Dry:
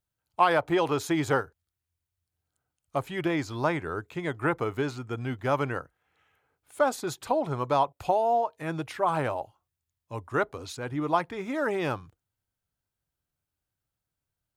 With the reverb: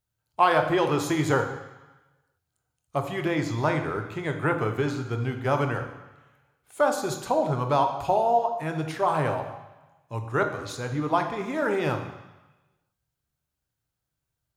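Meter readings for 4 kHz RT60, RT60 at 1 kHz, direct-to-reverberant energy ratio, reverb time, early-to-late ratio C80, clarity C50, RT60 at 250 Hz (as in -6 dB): 1.1 s, 1.2 s, 5.0 dB, 1.0 s, 10.0 dB, 7.5 dB, 1.0 s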